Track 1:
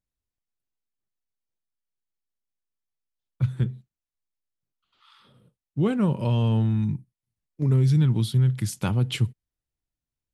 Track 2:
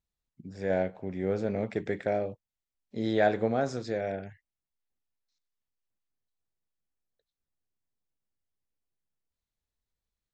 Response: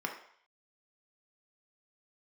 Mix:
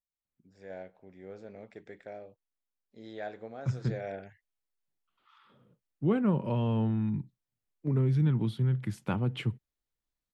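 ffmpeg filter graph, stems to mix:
-filter_complex "[0:a]acrossover=split=160 2700:gain=0.224 1 0.141[link_01][link_02][link_03];[link_01][link_02][link_03]amix=inputs=3:normalize=0,adelay=250,volume=-3dB[link_04];[1:a]lowshelf=frequency=200:gain=-11.5,volume=-3dB,afade=type=in:start_time=3.62:duration=0.53:silence=0.281838[link_05];[link_04][link_05]amix=inputs=2:normalize=0,lowshelf=frequency=67:gain=11"

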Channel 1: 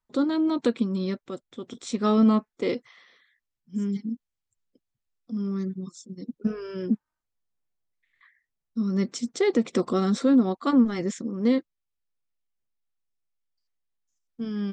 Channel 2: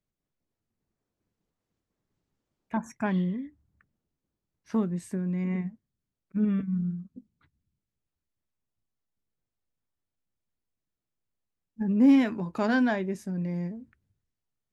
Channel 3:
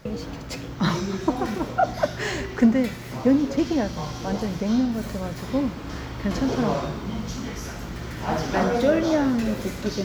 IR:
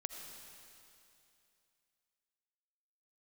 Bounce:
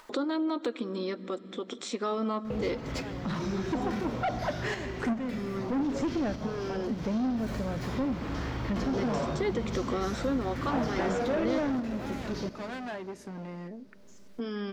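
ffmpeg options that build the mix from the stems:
-filter_complex "[0:a]deesser=0.85,volume=-2.5dB,asplit=2[link_01][link_02];[link_02]volume=-14dB[link_03];[1:a]asoftclip=type=hard:threshold=-29dB,volume=-12.5dB,asplit=2[link_04][link_05];[2:a]asoftclip=type=tanh:threshold=-22dB,adelay=2450,volume=-5.5dB,asplit=2[link_06][link_07];[link_07]volume=-11dB[link_08];[link_05]apad=whole_len=550881[link_09];[link_06][link_09]sidechaincompress=threshold=-53dB:ratio=8:attack=16:release=119[link_10];[link_01][link_04]amix=inputs=2:normalize=0,highpass=350,alimiter=limit=-23.5dB:level=0:latency=1,volume=0dB[link_11];[3:a]atrim=start_sample=2205[link_12];[link_03][link_08]amix=inputs=2:normalize=0[link_13];[link_13][link_12]afir=irnorm=-1:irlink=0[link_14];[link_10][link_11][link_14]amix=inputs=3:normalize=0,acompressor=mode=upward:threshold=-26dB:ratio=2.5,lowpass=frequency=3700:poles=1"

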